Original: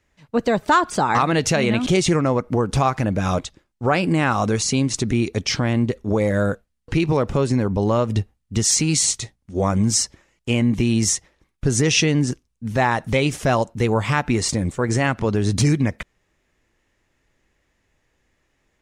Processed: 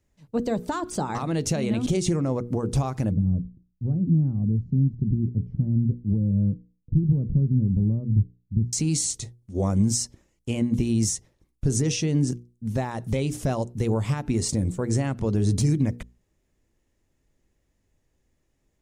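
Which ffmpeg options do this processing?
-filter_complex "[0:a]asettb=1/sr,asplit=3[a][b][c];[a]atrim=end=3.114[d];[b]atrim=start=3.11:end=8.73,asetpts=PTS-STARTPTS,afade=t=in:d=0.004:c=qsin,afade=t=out:st=5.616:d=0.004:c=qsin,lowpass=f=170:t=q:w=1.6[e];[c]atrim=start=8.726[f];[d][e]acrossfade=d=0.004:c1=hsin:c2=qsin[g];[g][f]acrossfade=d=0.004:c1=qsin:c2=hsin,bandreject=f=60:t=h:w=6,bandreject=f=120:t=h:w=6,bandreject=f=180:t=h:w=6,bandreject=f=240:t=h:w=6,bandreject=f=300:t=h:w=6,bandreject=f=360:t=h:w=6,bandreject=f=420:t=h:w=6,bandreject=f=480:t=h:w=6,alimiter=limit=-11dB:level=0:latency=1:release=110,equalizer=f=1.8k:w=0.38:g=-13.5"

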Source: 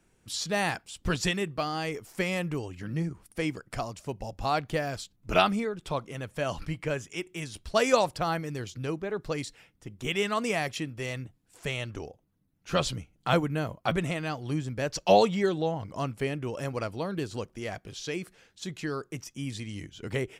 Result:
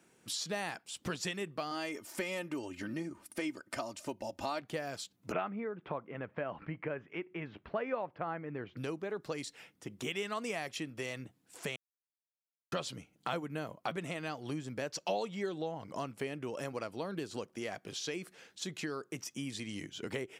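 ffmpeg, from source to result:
-filter_complex "[0:a]asettb=1/sr,asplit=3[a][b][c];[a]atrim=end=1.714[d];[b]atrim=start=1.71:end=4.62,asetpts=PTS-STARTPTS,afade=t=in:d=0.004:c=qsin,afade=t=out:st=2.906:d=0.004:c=qsin,aecho=1:1:3.3:0.61,atrim=end_sample=128331[e];[c]atrim=start=4.616[f];[d][e]acrossfade=d=0.004:c1=hsin:c2=qsin[g];[g][f]acrossfade=d=0.004:c1=qsin:c2=hsin,asettb=1/sr,asplit=3[h][i][j];[h]atrim=end=5.324[k];[i]atrim=start=5.32:end=8.77,asetpts=PTS-STARTPTS,afade=t=in:d=0.004:c=qsin,afade=t=out:st=3.446:d=0.004:c=qsin,lowpass=f=2.2k:w=0.5412,lowpass=f=2.2k:w=1.3066[l];[j]atrim=start=8.766[m];[k][l]acrossfade=d=0.004:c1=hsin:c2=qsin[n];[n][m]acrossfade=d=0.004:c1=qsin:c2=hsin,asplit=3[o][p][q];[o]atrim=end=11.76,asetpts=PTS-STARTPTS,afade=t=out:st=11.756:d=0.004:c=hsin[r];[p]atrim=start=11.76:end=12.72,asetpts=PTS-STARTPTS,volume=0[s];[q]atrim=start=12.72,asetpts=PTS-STARTPTS,afade=t=in:d=0.004:c=hsin[t];[r][s][t]concat=n=3:v=0:a=1,highpass=190,acompressor=threshold=-41dB:ratio=3,volume=3dB"

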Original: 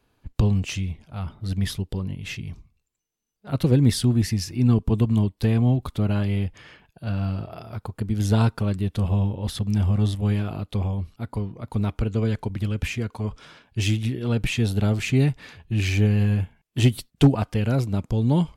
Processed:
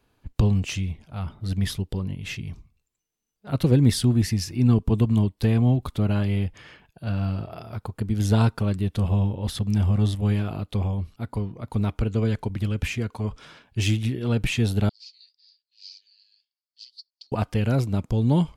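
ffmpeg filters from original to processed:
-filter_complex "[0:a]asettb=1/sr,asplit=3[a][b][c];[a]atrim=end=14.894[d];[b]atrim=start=14.89:end=17.32,asetpts=PTS-STARTPTS,afade=t=in:d=0.004:c=qsin,afade=t=out:st=2.426:d=0.004:c=qsin,asuperpass=centerf=4700:order=4:qfactor=5.7[e];[c]atrim=start=17.316[f];[d][e]acrossfade=d=0.004:c1=hsin:c2=qsin[g];[g][f]acrossfade=d=0.004:c1=qsin:c2=hsin"

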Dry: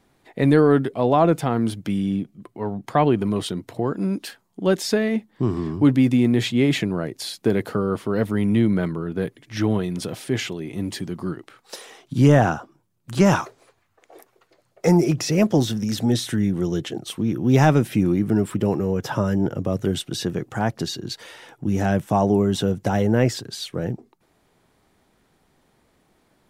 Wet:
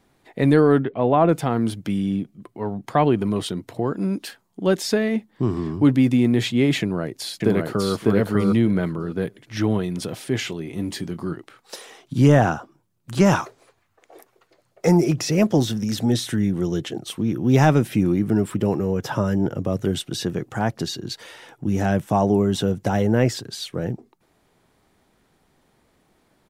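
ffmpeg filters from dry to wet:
-filter_complex "[0:a]asettb=1/sr,asplit=3[a][b][c];[a]atrim=end=0.784[d];[b]atrim=start=0.78:end=1.29,asetpts=PTS-STARTPTS,afade=t=in:d=0.004:c=qsin,afade=t=out:st=0.506:d=0.004:c=qsin,lowpass=f=3.1k:w=0.5412,lowpass=f=3.1k:w=1.3066[e];[c]atrim=start=1.286[f];[d][e]acrossfade=d=0.004:c1=hsin:c2=qsin[g];[g][f]acrossfade=d=0.004:c1=qsin:c2=hsin,asplit=2[h][i];[i]afade=t=in:st=6.8:d=0.01,afade=t=out:st=7.92:d=0.01,aecho=0:1:600|1200|1800:0.841395|0.126209|0.0189314[j];[h][j]amix=inputs=2:normalize=0,asettb=1/sr,asplit=3[k][l][m];[k]atrim=end=10.424[n];[l]atrim=start=10.42:end=11.36,asetpts=PTS-STARTPTS,afade=t=in:d=0.004:c=qsin,afade=t=out:st=0.936:d=0.004:c=qsin,asplit=2[o][p];[p]adelay=24,volume=-12dB[q];[o][q]amix=inputs=2:normalize=0,atrim=end_sample=41454[r];[m]atrim=start=11.356[s];[n][r]acrossfade=d=0.004:c1=hsin:c2=qsin[t];[t][s]acrossfade=d=0.004:c1=qsin:c2=hsin"

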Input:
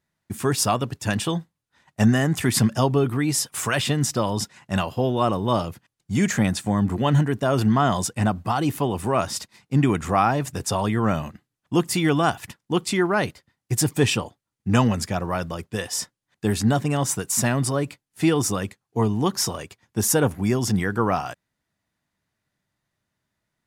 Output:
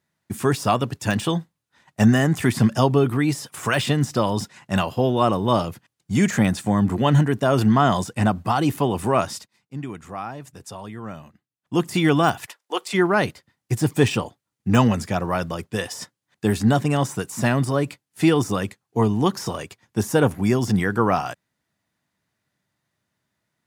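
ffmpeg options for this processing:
-filter_complex "[0:a]asplit=3[a][b][c];[a]afade=t=out:st=12.44:d=0.02[d];[b]highpass=f=460:w=0.5412,highpass=f=460:w=1.3066,afade=t=in:st=12.44:d=0.02,afade=t=out:st=12.93:d=0.02[e];[c]afade=t=in:st=12.93:d=0.02[f];[d][e][f]amix=inputs=3:normalize=0,asplit=3[g][h][i];[g]atrim=end=9.48,asetpts=PTS-STARTPTS,afade=t=out:st=9.17:d=0.31:silence=0.177828[j];[h]atrim=start=9.48:end=11.58,asetpts=PTS-STARTPTS,volume=-15dB[k];[i]atrim=start=11.58,asetpts=PTS-STARTPTS,afade=t=in:d=0.31:silence=0.177828[l];[j][k][l]concat=n=3:v=0:a=1,deesser=0.6,highpass=84,volume=2.5dB"

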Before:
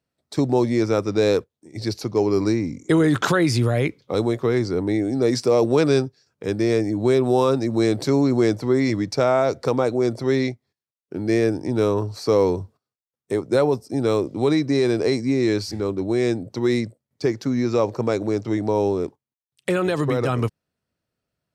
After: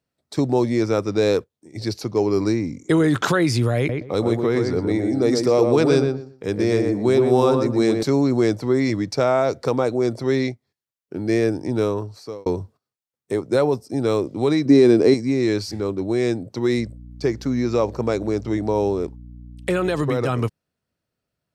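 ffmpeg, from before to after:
-filter_complex "[0:a]asettb=1/sr,asplit=3[a][b][c];[a]atrim=end=3.774[d];[b]atrim=start=3.77:end=8.03,asetpts=PTS-STARTPTS,afade=t=in:d=0.004:c=qsin,afade=t=out:st=4.256:d=0.004:c=qsin,asplit=2[e][f];[f]adelay=120,lowpass=f=1.7k:p=1,volume=-4dB,asplit=2[g][h];[h]adelay=120,lowpass=f=1.7k:p=1,volume=0.22,asplit=2[i][j];[j]adelay=120,lowpass=f=1.7k:p=1,volume=0.22[k];[e][g][i][k]amix=inputs=4:normalize=0,atrim=end_sample=187866[l];[c]atrim=start=8.026[m];[d][l]acrossfade=d=0.004:c1=hsin:c2=qsin[n];[n][m]acrossfade=d=0.004:c1=qsin:c2=hsin,asettb=1/sr,asplit=3[o][p][q];[o]atrim=end=14.654[r];[p]atrim=start=14.65:end=15.14,asetpts=PTS-STARTPTS,afade=t=in:d=0.004:c=qsin,afade=t=out:st=0.486:d=0.004:c=qsin,equalizer=f=280:w=0.95:g=9[s];[q]atrim=start=15.136[t];[r][s]acrossfade=d=0.004:c1=hsin:c2=qsin[u];[u][t]acrossfade=d=0.004:c1=qsin:c2=hsin,asettb=1/sr,asplit=3[v][w][x];[v]atrim=end=16.784[y];[w]atrim=start=16.78:end=20.04,asetpts=PTS-STARTPTS,afade=t=in:d=0.004:c=qsin,afade=t=out:st=3.256:d=0.004:c=qsin,aeval=exprs='val(0)+0.0126*(sin(2*PI*60*n/s)+sin(2*PI*2*60*n/s)/2+sin(2*PI*3*60*n/s)/3+sin(2*PI*4*60*n/s)/4+sin(2*PI*5*60*n/s)/5)':c=same[z];[x]atrim=start=20.036[aa];[y][z]acrossfade=d=0.004:c1=hsin:c2=qsin[ab];[ab][aa]acrossfade=d=0.004:c1=qsin:c2=hsin,asplit=2[ac][ad];[ac]atrim=end=12.46,asetpts=PTS-STARTPTS,afade=t=out:st=11.75:d=0.71[ae];[ad]atrim=start=12.46,asetpts=PTS-STARTPTS,afade=t=in:d=0.004:c=hsin[af];[ae][af]concat=n=2:v=0:a=1"

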